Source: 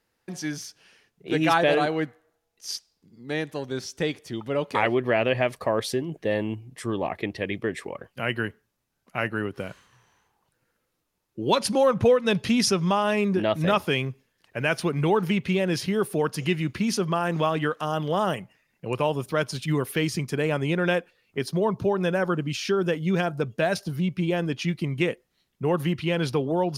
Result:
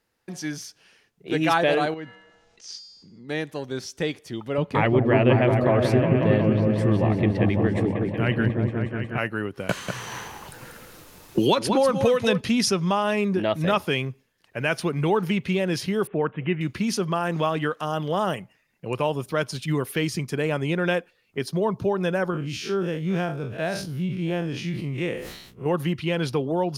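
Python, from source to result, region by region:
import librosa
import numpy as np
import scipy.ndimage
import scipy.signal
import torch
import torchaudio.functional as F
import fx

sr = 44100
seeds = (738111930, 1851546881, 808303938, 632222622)

y = fx.chain(x, sr, fx.lowpass(hz=7100.0, slope=24),
    fx.comb_fb(f0_hz=190.0, decay_s=0.62, harmonics='odd', damping=0.0, mix_pct=70),
    fx.env_flatten(amount_pct=50), at=(1.94, 3.29))
y = fx.chain(y, sr, fx.bass_treble(bass_db=11, treble_db=-8),
    fx.echo_opening(ms=182, hz=400, octaves=1, feedback_pct=70, wet_db=0), at=(4.58, 9.18))
y = fx.chain(y, sr, fx.echo_single(ms=190, db=-9.0),
    fx.band_squash(depth_pct=100), at=(9.69, 12.41))
y = fx.chain(y, sr, fx.lowpass(hz=2500.0, slope=24),
    fx.resample_bad(factor=6, down='none', up='filtered'), at=(16.07, 16.61))
y = fx.chain(y, sr, fx.spec_blur(span_ms=88.0),
    fx.sustainer(db_per_s=55.0), at=(22.3, 25.66))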